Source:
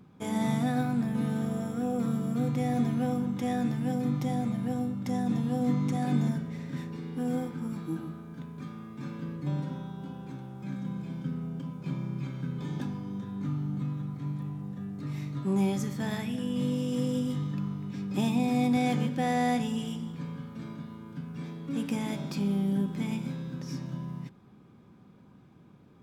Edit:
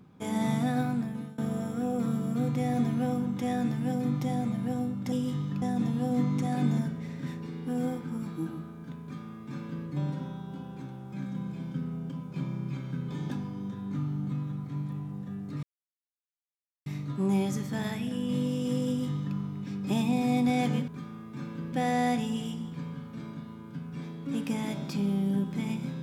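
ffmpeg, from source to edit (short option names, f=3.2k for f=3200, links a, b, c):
-filter_complex "[0:a]asplit=7[a][b][c][d][e][f][g];[a]atrim=end=1.38,asetpts=PTS-STARTPTS,afade=t=out:st=0.88:d=0.5:silence=0.0668344[h];[b]atrim=start=1.38:end=5.122,asetpts=PTS-STARTPTS,afade=t=in:d=0.004:c=hsin:silence=0.0668344[i];[c]atrim=start=17.138:end=17.642[j];[d]atrim=start=5.118:end=15.13,asetpts=PTS-STARTPTS,afade=t=out:st=10.008:d=0.004:c=hsin,apad=pad_dur=1.23[k];[e]atrim=start=15.13:end=19.152,asetpts=PTS-STARTPTS,afade=t=in:d=0.004:c=hsin[l];[f]atrim=start=8.518:end=9.372[m];[g]atrim=start=19.148[n];[h][i]concat=n=2:v=0:a=1[o];[o][j]acrossfade=d=0.004:c1=hsin:c2=hsin[p];[k][l]concat=n=2:v=0:a=1[q];[p][q]acrossfade=d=0.004:c1=hsin:c2=hsin[r];[r][m]acrossfade=d=0.004:c1=hsin:c2=hsin[s];[s][n]acrossfade=d=0.004:c1=hsin:c2=hsin"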